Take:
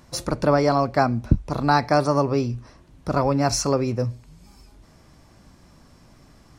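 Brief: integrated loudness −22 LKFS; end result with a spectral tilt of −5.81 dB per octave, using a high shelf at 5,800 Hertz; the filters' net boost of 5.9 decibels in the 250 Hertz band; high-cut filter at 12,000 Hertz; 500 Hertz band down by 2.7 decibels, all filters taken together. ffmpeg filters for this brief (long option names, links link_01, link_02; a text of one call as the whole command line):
ffmpeg -i in.wav -af "lowpass=12000,equalizer=frequency=250:width_type=o:gain=8.5,equalizer=frequency=500:width_type=o:gain=-5.5,highshelf=frequency=5800:gain=3.5,volume=-2dB" out.wav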